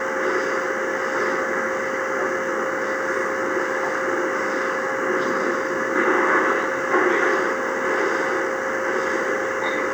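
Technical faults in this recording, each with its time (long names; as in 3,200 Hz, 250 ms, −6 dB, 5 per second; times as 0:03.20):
whistle 530 Hz −27 dBFS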